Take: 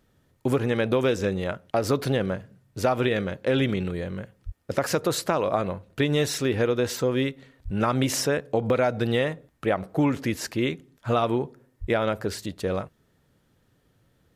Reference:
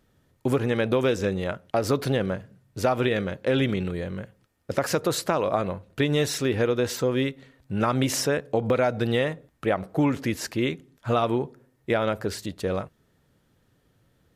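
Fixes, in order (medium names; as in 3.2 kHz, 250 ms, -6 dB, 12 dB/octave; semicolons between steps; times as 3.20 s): 4.45–4.57 s: high-pass 140 Hz 24 dB/octave; 7.64–7.76 s: high-pass 140 Hz 24 dB/octave; 11.80–11.92 s: high-pass 140 Hz 24 dB/octave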